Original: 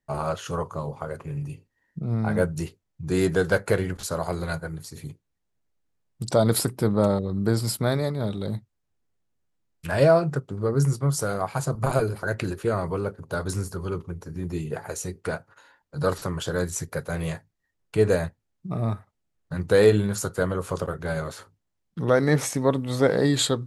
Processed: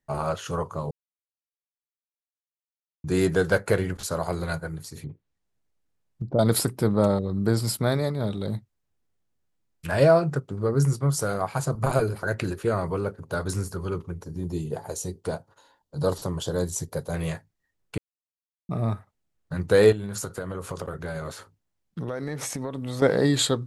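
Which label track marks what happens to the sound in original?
0.910000	3.040000	mute
5.000000	6.390000	low-pass that closes with the level closes to 450 Hz, closed at -30 dBFS
14.240000	17.140000	high-order bell 1.8 kHz -9.5 dB 1.3 oct
17.980000	18.690000	mute
19.920000	23.020000	compression 12:1, threshold -27 dBFS

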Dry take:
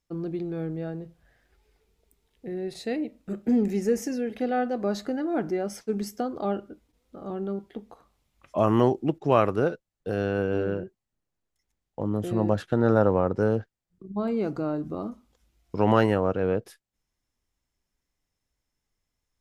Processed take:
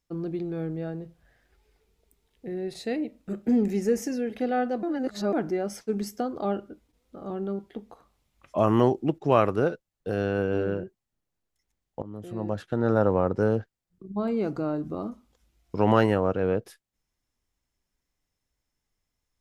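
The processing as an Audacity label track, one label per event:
4.830000	5.330000	reverse
12.020000	13.250000	fade in, from -15.5 dB

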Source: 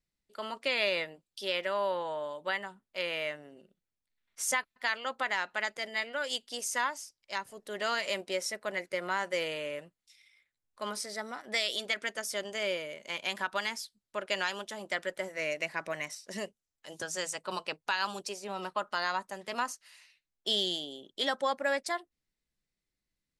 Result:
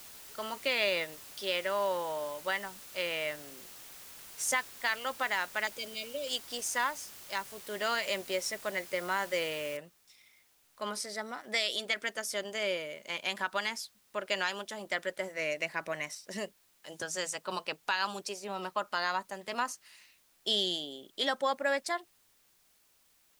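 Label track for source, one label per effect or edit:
5.670000	6.270000	brick-wall FIR band-stop 650–2200 Hz
9.770000	9.770000	noise floor step -50 dB -68 dB

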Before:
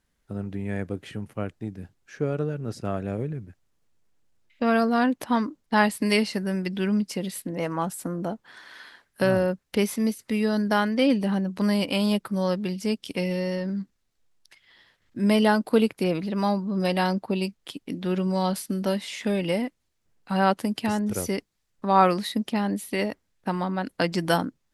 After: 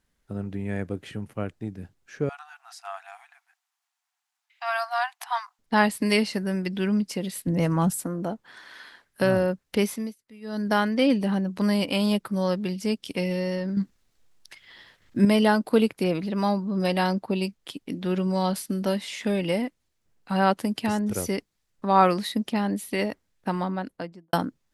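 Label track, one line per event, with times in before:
2.290000	5.590000	brick-wall FIR high-pass 680 Hz
7.470000	8.010000	tone controls bass +13 dB, treble +6 dB
9.850000	10.720000	dip -22 dB, fades 0.31 s
13.770000	15.250000	gain +7 dB
23.570000	24.330000	studio fade out

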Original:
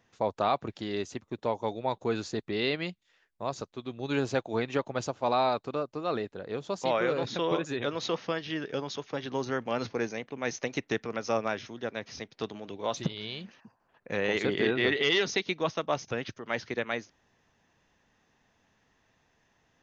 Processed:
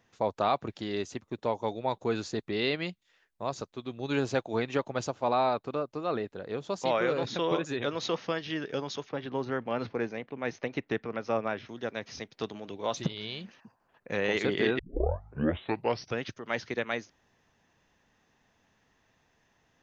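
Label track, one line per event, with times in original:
5.130000	6.700000	dynamic bell 6.2 kHz, up to -7 dB, over -51 dBFS, Q 0.72
9.090000	11.690000	distance through air 230 m
14.790000	14.790000	tape start 1.38 s

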